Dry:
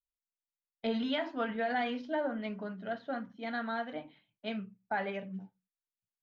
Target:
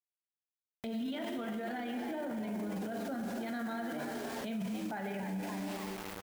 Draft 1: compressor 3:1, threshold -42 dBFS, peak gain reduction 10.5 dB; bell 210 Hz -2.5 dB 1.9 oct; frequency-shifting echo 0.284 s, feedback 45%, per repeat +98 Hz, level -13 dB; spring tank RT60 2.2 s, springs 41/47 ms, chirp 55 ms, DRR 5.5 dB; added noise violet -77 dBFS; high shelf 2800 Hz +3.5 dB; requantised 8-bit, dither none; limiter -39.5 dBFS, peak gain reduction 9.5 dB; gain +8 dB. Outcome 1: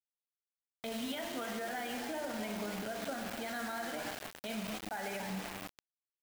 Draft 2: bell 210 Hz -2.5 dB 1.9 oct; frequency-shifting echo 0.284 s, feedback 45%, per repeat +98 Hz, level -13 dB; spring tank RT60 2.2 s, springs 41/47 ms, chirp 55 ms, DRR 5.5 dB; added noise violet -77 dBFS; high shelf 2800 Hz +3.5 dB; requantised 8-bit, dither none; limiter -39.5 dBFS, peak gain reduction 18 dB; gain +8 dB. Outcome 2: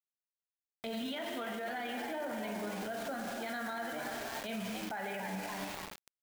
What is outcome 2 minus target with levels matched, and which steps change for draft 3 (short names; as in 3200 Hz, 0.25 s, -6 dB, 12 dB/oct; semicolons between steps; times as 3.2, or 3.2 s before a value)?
250 Hz band -4.5 dB
change: bell 210 Hz +9.5 dB 1.9 oct